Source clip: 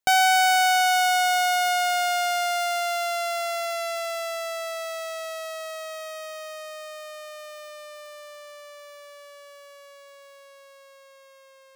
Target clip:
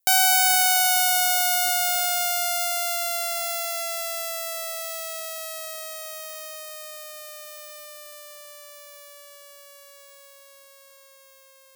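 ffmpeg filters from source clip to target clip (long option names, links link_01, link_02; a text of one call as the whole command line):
ffmpeg -i in.wav -af "aemphasis=mode=production:type=75fm,volume=-4dB" out.wav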